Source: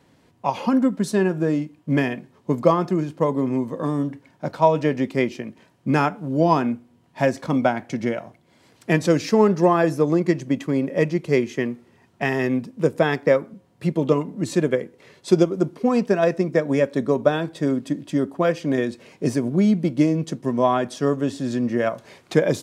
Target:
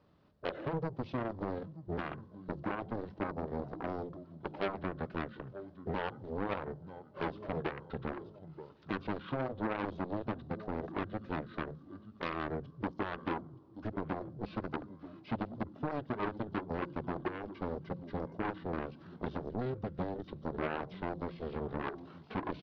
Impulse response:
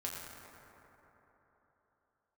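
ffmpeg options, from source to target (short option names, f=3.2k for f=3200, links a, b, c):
-filter_complex "[0:a]aecho=1:1:927|1854:0.1|0.024,acompressor=threshold=-22dB:ratio=4,asplit=2[a][b];[1:a]atrim=start_sample=2205,lowpass=7.4k[c];[b][c]afir=irnorm=-1:irlink=0,volume=-21dB[d];[a][d]amix=inputs=2:normalize=0,acrossover=split=5000[e][f];[f]acompressor=threshold=-56dB:ratio=4:attack=1:release=60[g];[e][g]amix=inputs=2:normalize=0,equalizer=f=3.7k:w=1.5:g=-8.5,aeval=exprs='0.251*(cos(1*acos(clip(val(0)/0.251,-1,1)))-cos(1*PI/2))+0.02*(cos(2*acos(clip(val(0)/0.251,-1,1)))-cos(2*PI/2))+0.0708*(cos(3*acos(clip(val(0)/0.251,-1,1)))-cos(3*PI/2))+0.02*(cos(7*acos(clip(val(0)/0.251,-1,1)))-cos(7*PI/2))':c=same,asoftclip=type=tanh:threshold=-25.5dB,lowpass=f=7.5k:w=0.5412,lowpass=f=7.5k:w=1.3066,lowshelf=f=230:g=-9,bandreject=f=286:t=h:w=4,bandreject=f=572:t=h:w=4,bandreject=f=858:t=h:w=4,asetrate=26990,aresample=44100,atempo=1.63392,volume=1.5dB"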